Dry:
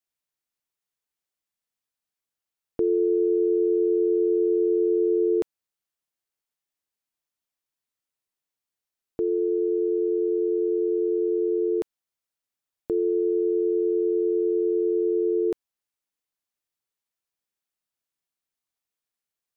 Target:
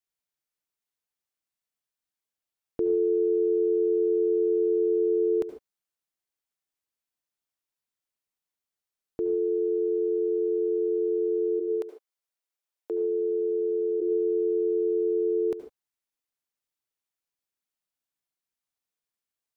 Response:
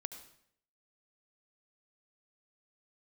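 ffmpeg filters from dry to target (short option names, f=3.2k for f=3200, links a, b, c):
-filter_complex "[0:a]asplit=3[a][b][c];[a]afade=t=out:st=11.59:d=0.02[d];[b]highpass=f=360:w=0.5412,highpass=f=360:w=1.3066,afade=t=in:st=11.59:d=0.02,afade=t=out:st=14:d=0.02[e];[c]afade=t=in:st=14:d=0.02[f];[d][e][f]amix=inputs=3:normalize=0[g];[1:a]atrim=start_sample=2205,afade=t=out:st=0.21:d=0.01,atrim=end_sample=9702[h];[g][h]afir=irnorm=-1:irlink=0"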